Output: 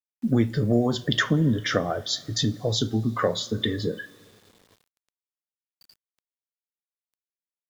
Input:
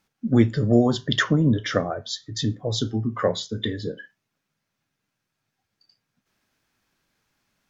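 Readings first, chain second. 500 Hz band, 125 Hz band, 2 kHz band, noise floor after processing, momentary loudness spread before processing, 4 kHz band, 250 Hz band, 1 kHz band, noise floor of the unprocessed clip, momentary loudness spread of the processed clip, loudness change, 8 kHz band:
-2.0 dB, -1.5 dB, -0.5 dB, under -85 dBFS, 11 LU, +1.0 dB, -2.5 dB, -0.5 dB, -81 dBFS, 6 LU, -1.5 dB, n/a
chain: compressor 2:1, threshold -28 dBFS, peak gain reduction 9.5 dB; two-slope reverb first 0.3 s, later 3.6 s, from -18 dB, DRR 15 dB; requantised 10-bit, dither none; gain +4.5 dB

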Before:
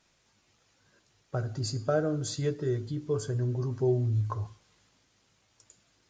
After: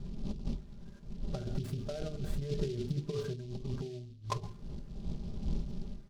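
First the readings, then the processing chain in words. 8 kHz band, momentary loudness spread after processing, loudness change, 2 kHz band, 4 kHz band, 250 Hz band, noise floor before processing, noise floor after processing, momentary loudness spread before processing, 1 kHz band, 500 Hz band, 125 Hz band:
-12.0 dB, 10 LU, -9.0 dB, -9.5 dB, -6.5 dB, -4.5 dB, -70 dBFS, -51 dBFS, 7 LU, -5.0 dB, -9.0 dB, -7.0 dB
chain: wind noise 170 Hz -41 dBFS; tilt -2 dB/oct; negative-ratio compressor -28 dBFS, ratio -0.5; LPF 2200 Hz 12 dB/oct; notches 50/100/150/200/250/300/350/400/450 Hz; comb 5 ms, depth 66%; noise-modulated delay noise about 3800 Hz, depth 0.056 ms; gain -5 dB

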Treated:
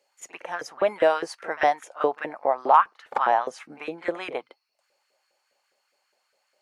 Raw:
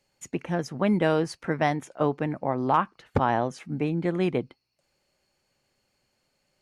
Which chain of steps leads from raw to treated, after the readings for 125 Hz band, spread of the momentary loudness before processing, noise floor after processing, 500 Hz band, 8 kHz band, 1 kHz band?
under -20 dB, 7 LU, -74 dBFS, +2.0 dB, n/a, +5.5 dB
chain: pre-echo 41 ms -16 dB; LFO high-pass saw up 4.9 Hz 440–1600 Hz

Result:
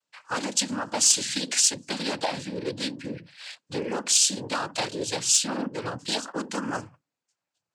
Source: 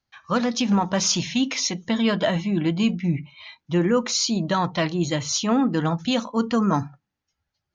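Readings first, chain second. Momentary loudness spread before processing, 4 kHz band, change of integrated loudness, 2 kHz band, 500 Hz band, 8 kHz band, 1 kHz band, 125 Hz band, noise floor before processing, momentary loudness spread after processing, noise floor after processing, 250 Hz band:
5 LU, +0.5 dB, -2.5 dB, -3.0 dB, -7.0 dB, n/a, -5.5 dB, -14.0 dB, -82 dBFS, 14 LU, under -85 dBFS, -12.0 dB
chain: noise vocoder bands 8; compressor 2:1, threshold -28 dBFS, peak gain reduction 9.5 dB; tone controls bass -11 dB, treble +11 dB; wavefolder -8 dBFS; mismatched tape noise reduction decoder only

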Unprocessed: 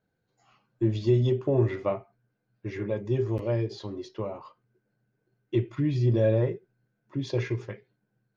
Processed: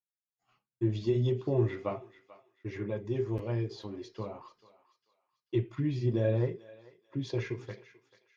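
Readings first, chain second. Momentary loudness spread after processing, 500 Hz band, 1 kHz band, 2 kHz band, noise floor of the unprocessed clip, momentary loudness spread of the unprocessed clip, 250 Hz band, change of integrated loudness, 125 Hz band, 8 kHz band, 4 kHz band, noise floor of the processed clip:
14 LU, -5.5 dB, -4.0 dB, -4.0 dB, -79 dBFS, 15 LU, -4.5 dB, -5.0 dB, -5.0 dB, n/a, -4.0 dB, under -85 dBFS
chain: notch 580 Hz, Q 12; expander -57 dBFS; flange 1.4 Hz, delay 0.2 ms, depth 4.7 ms, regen -66%; on a send: thinning echo 0.439 s, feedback 36%, high-pass 1100 Hz, level -14.5 dB

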